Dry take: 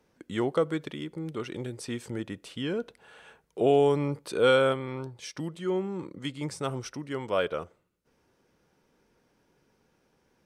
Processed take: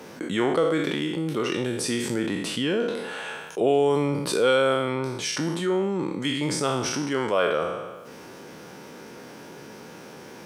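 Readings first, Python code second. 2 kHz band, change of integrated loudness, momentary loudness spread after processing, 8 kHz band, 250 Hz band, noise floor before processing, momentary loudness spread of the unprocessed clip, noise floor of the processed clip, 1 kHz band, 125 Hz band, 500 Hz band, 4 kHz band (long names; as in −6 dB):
+6.5 dB, +4.5 dB, 21 LU, +13.0 dB, +6.5 dB, −71 dBFS, 15 LU, −43 dBFS, +5.0 dB, +3.5 dB, +3.5 dB, +8.0 dB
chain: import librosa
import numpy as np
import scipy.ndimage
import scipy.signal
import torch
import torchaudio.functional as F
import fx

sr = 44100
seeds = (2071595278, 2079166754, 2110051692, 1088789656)

y = fx.spec_trails(x, sr, decay_s=0.68)
y = scipy.signal.sosfilt(scipy.signal.butter(2, 150.0, 'highpass', fs=sr, output='sos'), y)
y = fx.env_flatten(y, sr, amount_pct=50)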